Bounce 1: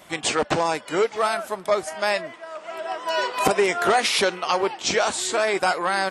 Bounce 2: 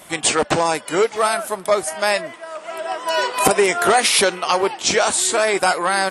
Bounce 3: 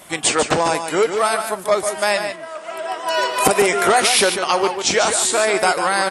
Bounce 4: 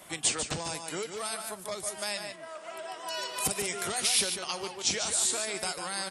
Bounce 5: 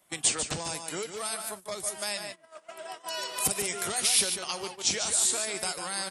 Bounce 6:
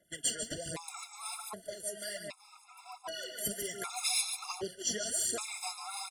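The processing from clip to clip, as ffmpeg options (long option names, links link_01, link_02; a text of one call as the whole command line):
ffmpeg -i in.wav -af "equalizer=frequency=10000:width_type=o:width=0.62:gain=11,volume=4dB" out.wav
ffmpeg -i in.wav -af "aecho=1:1:146:0.398" out.wav
ffmpeg -i in.wav -filter_complex "[0:a]acrossover=split=180|3000[link_01][link_02][link_03];[link_02]acompressor=threshold=-32dB:ratio=3[link_04];[link_01][link_04][link_03]amix=inputs=3:normalize=0,volume=-8dB" out.wav
ffmpeg -i in.wav -af "agate=range=-17dB:threshold=-40dB:ratio=16:detection=peak,highshelf=frequency=9000:gain=6" out.wav
ffmpeg -i in.wav -af "aphaser=in_gain=1:out_gain=1:delay=4.9:decay=0.63:speed=1.3:type=sinusoidal,aecho=1:1:373|746|1119|1492|1865:0.1|0.057|0.0325|0.0185|0.0106,afftfilt=real='re*gt(sin(2*PI*0.65*pts/sr)*(1-2*mod(floor(b*sr/1024/690),2)),0)':imag='im*gt(sin(2*PI*0.65*pts/sr)*(1-2*mod(floor(b*sr/1024/690),2)),0)':win_size=1024:overlap=0.75,volume=-6.5dB" out.wav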